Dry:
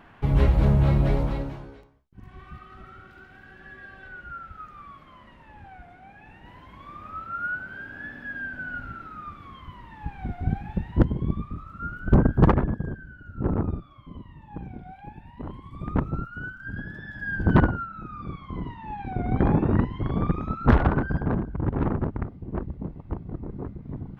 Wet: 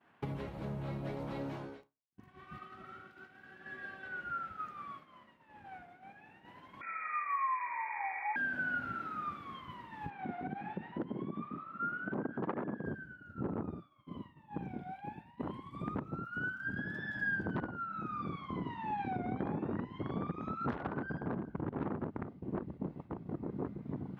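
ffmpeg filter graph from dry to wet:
ffmpeg -i in.wav -filter_complex "[0:a]asettb=1/sr,asplit=3[link_01][link_02][link_03];[link_01]atrim=end=6.814[link_04];[link_02]atrim=start=6.81:end=8.36,asetpts=PTS-STARTPTS,afade=type=in:duration=0.004:curve=qsin,afade=type=out:start_time=1.546:duration=0.004:curve=qsin,equalizer=frequency=580:width_type=o:width=0.37:gain=13.5,lowpass=frequency=2100:width_type=q:width=0.5098,lowpass=frequency=2100:width_type=q:width=0.6013,lowpass=frequency=2100:width_type=q:width=0.9,lowpass=frequency=2100:width_type=q:width=2.563,afreqshift=-2500[link_05];[link_03]atrim=start=8.356[link_06];[link_04][link_05]acrossfade=duration=0.004:curve1=hsin:curve2=qsin[link_07];[link_07][link_06]acrossfade=duration=0.004:curve1=qsin:curve2=hsin,asettb=1/sr,asplit=3[link_08][link_09][link_10];[link_08]atrim=end=10.104[link_11];[link_09]atrim=start=10.1:end=12.86,asetpts=PTS-STARTPTS,afade=type=in:duration=0.004:curve=qsin,afade=type=out:start_time=2.756:duration=0.004:curve=qsin,acompressor=threshold=-26dB:ratio=6:attack=3.2:release=140:knee=1:detection=peak,highpass=210,lowpass=2800[link_12];[link_10]atrim=start=12.856[link_13];[link_11][link_12]acrossfade=duration=0.004:curve1=hsin:curve2=qsin[link_14];[link_14][link_13]acrossfade=duration=0.004:curve1=qsin:curve2=hsin,acompressor=threshold=-30dB:ratio=12,highpass=170,agate=range=-33dB:threshold=-43dB:ratio=3:detection=peak" out.wav

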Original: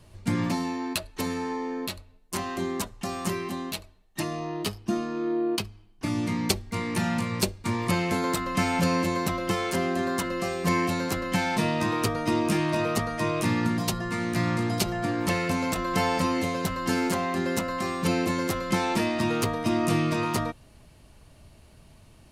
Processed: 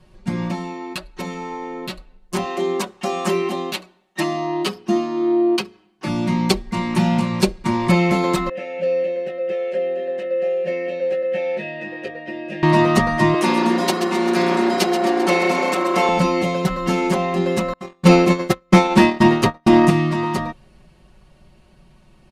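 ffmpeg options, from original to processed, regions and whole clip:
ffmpeg -i in.wav -filter_complex "[0:a]asettb=1/sr,asplit=3[link_01][link_02][link_03];[link_01]atrim=end=2.454[link_04];[link_02]atrim=start=2.45:end=6.07,asetpts=PTS-STARTPTS,afade=type=in:duration=0.004:curve=qsin,afade=type=out:start_time=3.616:duration=0.004:curve=qsin,highpass=260,bandreject=frequency=60:width_type=h:width=6,bandreject=frequency=120:width_type=h:width=6,bandreject=frequency=180:width_type=h:width=6,bandreject=frequency=240:width_type=h:width=6,bandreject=frequency=300:width_type=h:width=6,bandreject=frequency=360:width_type=h:width=6,bandreject=frequency=420:width_type=h:width=6,bandreject=frequency=480:width_type=h:width=6[link_05];[link_03]atrim=start=6.066[link_06];[link_04][link_05]acrossfade=duration=0.004:curve1=hsin:curve2=qsin[link_07];[link_07][link_06]acrossfade=duration=0.004:curve1=qsin:curve2=hsin,asettb=1/sr,asplit=3[link_08][link_09][link_10];[link_08]atrim=end=8.494[link_11];[link_09]atrim=start=8.49:end=12.63,asetpts=PTS-STARTPTS,afade=type=in:duration=0.004:curve=qsin,afade=type=out:start_time=4.136:duration=0.004:curve=qsin,asplit=3[link_12][link_13][link_14];[link_12]bandpass=frequency=530:width_type=q:width=8,volume=0dB[link_15];[link_13]bandpass=frequency=1840:width_type=q:width=8,volume=-6dB[link_16];[link_14]bandpass=frequency=2480:width_type=q:width=8,volume=-9dB[link_17];[link_15][link_16][link_17]amix=inputs=3:normalize=0,asplit=2[link_18][link_19];[link_19]adelay=19,volume=-6dB[link_20];[link_18][link_20]amix=inputs=2:normalize=0,atrim=end_sample=182574[link_21];[link_10]atrim=start=12.626[link_22];[link_11][link_21]acrossfade=duration=0.004:curve1=hsin:curve2=qsin[link_23];[link_23][link_22]acrossfade=duration=0.004:curve1=qsin:curve2=hsin,asettb=1/sr,asplit=3[link_24][link_25][link_26];[link_24]atrim=end=13.344[link_27];[link_25]atrim=start=13.34:end=16.09,asetpts=PTS-STARTPTS,afade=type=in:duration=0.004:curve=qsin,afade=type=out:start_time=2.746:duration=0.004:curve=qsin,highpass=frequency=250:width=0.5412,highpass=frequency=250:width=1.3066,asplit=9[link_28][link_29][link_30][link_31][link_32][link_33][link_34][link_35][link_36];[link_29]adelay=131,afreqshift=31,volume=-9.5dB[link_37];[link_30]adelay=262,afreqshift=62,volume=-13.5dB[link_38];[link_31]adelay=393,afreqshift=93,volume=-17.5dB[link_39];[link_32]adelay=524,afreqshift=124,volume=-21.5dB[link_40];[link_33]adelay=655,afreqshift=155,volume=-25.6dB[link_41];[link_34]adelay=786,afreqshift=186,volume=-29.6dB[link_42];[link_35]adelay=917,afreqshift=217,volume=-33.6dB[link_43];[link_36]adelay=1048,afreqshift=248,volume=-37.6dB[link_44];[link_28][link_37][link_38][link_39][link_40][link_41][link_42][link_43][link_44]amix=inputs=9:normalize=0,atrim=end_sample=121275[link_45];[link_26]atrim=start=16.086[link_46];[link_27][link_45]acrossfade=duration=0.004:curve1=hsin:curve2=qsin[link_47];[link_47][link_46]acrossfade=duration=0.004:curve1=qsin:curve2=hsin,asettb=1/sr,asplit=3[link_48][link_49][link_50];[link_48]atrim=end=17.734[link_51];[link_49]atrim=start=17.73:end=19.9,asetpts=PTS-STARTPTS,afade=type=in:duration=0.004:curve=qsin,afade=type=out:start_time=2.166:duration=0.004:curve=qsin,agate=range=-44dB:threshold=-26dB:ratio=16:release=100:detection=peak,aeval=exprs='0.266*sin(PI/2*1.78*val(0)/0.266)':channel_layout=same[link_52];[link_50]atrim=start=19.896[link_53];[link_51][link_52]acrossfade=duration=0.004:curve1=hsin:curve2=qsin[link_54];[link_54][link_53]acrossfade=duration=0.004:curve1=qsin:curve2=hsin,aemphasis=mode=reproduction:type=50kf,aecho=1:1:5.4:0.98,dynaudnorm=framelen=160:gausssize=31:maxgain=11.5dB" out.wav

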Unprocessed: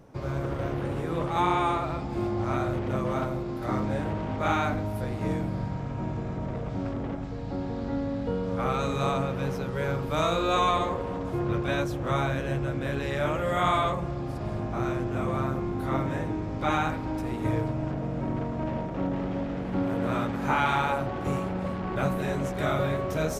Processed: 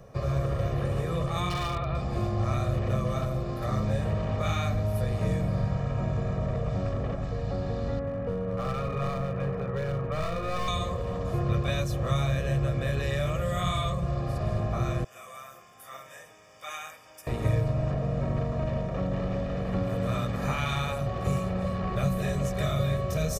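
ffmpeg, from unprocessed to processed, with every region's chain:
ffmpeg -i in.wav -filter_complex "[0:a]asettb=1/sr,asplit=3[link_01][link_02][link_03];[link_01]atrim=end=1.494[link_04];[link_02]atrim=start=1.49:end=1.95,asetpts=PTS-STARTPTS,afade=type=in:duration=0.004:curve=qsin,afade=type=out:start_time=0.456:duration=0.004:curve=qsin,lowpass=frequency=3700:width=0.5412,lowpass=frequency=3700:width=1.3066,aeval=exprs='0.106*(abs(mod(val(0)/0.106+3,4)-2)-1)':channel_layout=same[link_05];[link_03]atrim=start=1.946[link_06];[link_04][link_05]acrossfade=duration=0.004:curve1=hsin:curve2=qsin[link_07];[link_07][link_06]acrossfade=duration=0.004:curve1=qsin:curve2=hsin,asettb=1/sr,asplit=3[link_08][link_09][link_10];[link_08]atrim=end=7.994[link_11];[link_09]atrim=start=7.99:end=10.68,asetpts=PTS-STARTPTS,afade=type=in:duration=0.004:curve=qsin,afade=type=out:start_time=2.686:duration=0.004:curve=qsin,lowpass=frequency=2200:width=0.5412,lowpass=frequency=2200:width=1.3066,lowshelf=frequency=67:gain=-11.5,aeval=exprs='clip(val(0),-1,0.0422)':channel_layout=same[link_12];[link_10]atrim=start=10.676[link_13];[link_11][link_12]acrossfade=duration=0.004:curve1=hsin:curve2=qsin[link_14];[link_14][link_13]acrossfade=duration=0.004:curve1=qsin:curve2=hsin,asettb=1/sr,asplit=3[link_15][link_16][link_17];[link_15]atrim=end=15.044[link_18];[link_16]atrim=start=15.04:end=17.27,asetpts=PTS-STARTPTS,afade=type=in:duration=0.004:curve=qsin,afade=type=out:start_time=2.226:duration=0.004:curve=qsin,asuperstop=centerf=4100:order=4:qfactor=4.9,aderivative,bandreject=frequency=50:width_type=h:width=6,bandreject=frequency=100:width_type=h:width=6,bandreject=frequency=150:width_type=h:width=6,bandreject=frequency=200:width_type=h:width=6,bandreject=frequency=250:width_type=h:width=6,bandreject=frequency=300:width_type=h:width=6,bandreject=frequency=350:width_type=h:width=6,bandreject=frequency=400:width_type=h:width=6[link_19];[link_17]atrim=start=17.266[link_20];[link_18][link_19]acrossfade=duration=0.004:curve1=hsin:curve2=qsin[link_21];[link_21][link_20]acrossfade=duration=0.004:curve1=qsin:curve2=hsin,bandreject=frequency=3200:width=21,aecho=1:1:1.7:0.7,acrossover=split=250|3000[link_22][link_23][link_24];[link_23]acompressor=threshold=-34dB:ratio=6[link_25];[link_22][link_25][link_24]amix=inputs=3:normalize=0,volume=2dB" out.wav

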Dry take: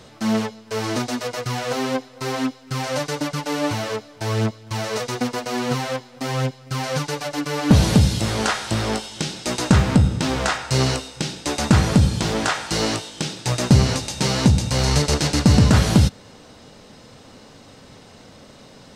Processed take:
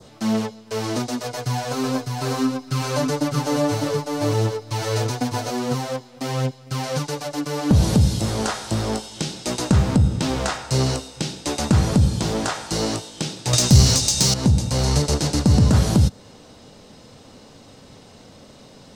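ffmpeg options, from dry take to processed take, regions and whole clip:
ffmpeg -i in.wav -filter_complex "[0:a]asettb=1/sr,asplit=3[link_01][link_02][link_03];[link_01]atrim=end=1.234[link_04];[link_02]atrim=start=1.23:end=5.51,asetpts=PTS-STARTPTS,afade=type=in:duration=0.004:curve=qsin,afade=type=out:start_time=4.276:duration=0.004:curve=qsin,aecho=1:1:6.9:0.64,atrim=end_sample=188748,aecho=1:1:604:0.631,atrim=end_sample=188748[link_05];[link_03]atrim=start=5.506[link_06];[link_04][link_05]acrossfade=duration=0.004:curve1=hsin:curve2=qsin[link_07];[link_07][link_06]acrossfade=duration=0.004:curve1=qsin:curve2=hsin,asettb=1/sr,asplit=3[link_08][link_09][link_10];[link_08]atrim=end=13.534[link_11];[link_09]atrim=start=13.53:end=14.34,asetpts=PTS-STARTPTS,afade=type=in:duration=0.004:curve=qsin,afade=type=out:start_time=0.806:duration=0.004:curve=qsin,equalizer=frequency=6300:width_type=o:width=2.3:gain=14,acontrast=78[link_12];[link_10]atrim=start=14.336[link_13];[link_11][link_12]acrossfade=duration=0.004:curve1=hsin:curve2=qsin[link_14];[link_14][link_13]acrossfade=duration=0.004:curve1=qsin:curve2=hsin,adynamicequalizer=threshold=0.0126:dfrequency=2600:dqfactor=1:tfrequency=2600:tqfactor=1:attack=5:release=100:ratio=0.375:range=2.5:mode=cutabove:tftype=bell,acrossover=split=150[link_15][link_16];[link_16]acompressor=threshold=-16dB:ratio=6[link_17];[link_15][link_17]amix=inputs=2:normalize=0,equalizer=frequency=1700:width=1:gain=-4" out.wav

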